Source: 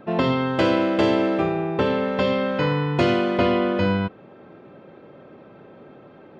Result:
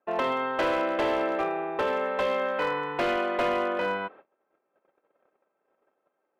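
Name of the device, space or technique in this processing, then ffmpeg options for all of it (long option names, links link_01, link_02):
walkie-talkie: -af "highpass=580,lowpass=2200,asoftclip=type=hard:threshold=-20.5dB,agate=range=-26dB:threshold=-47dB:ratio=16:detection=peak"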